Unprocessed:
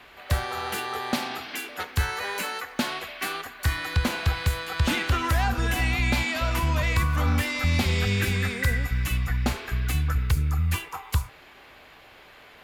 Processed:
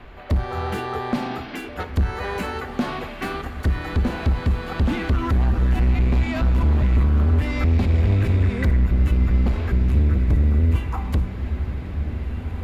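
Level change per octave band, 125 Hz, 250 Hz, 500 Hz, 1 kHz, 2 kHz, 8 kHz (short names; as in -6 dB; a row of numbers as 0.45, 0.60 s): +6.5 dB, +6.5 dB, +4.5 dB, 0.0 dB, -4.5 dB, under -10 dB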